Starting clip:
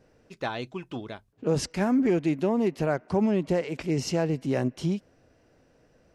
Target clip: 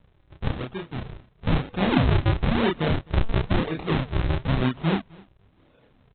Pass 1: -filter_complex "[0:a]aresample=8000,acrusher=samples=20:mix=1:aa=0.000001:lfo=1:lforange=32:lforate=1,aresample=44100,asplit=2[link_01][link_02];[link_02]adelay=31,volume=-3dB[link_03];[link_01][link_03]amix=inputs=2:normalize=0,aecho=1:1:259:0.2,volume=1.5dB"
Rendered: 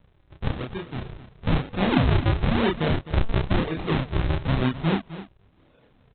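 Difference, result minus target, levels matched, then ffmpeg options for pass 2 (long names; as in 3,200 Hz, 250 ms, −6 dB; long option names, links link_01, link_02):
echo-to-direct +10.5 dB
-filter_complex "[0:a]aresample=8000,acrusher=samples=20:mix=1:aa=0.000001:lfo=1:lforange=32:lforate=1,aresample=44100,asplit=2[link_01][link_02];[link_02]adelay=31,volume=-3dB[link_03];[link_01][link_03]amix=inputs=2:normalize=0,aecho=1:1:259:0.0596,volume=1.5dB"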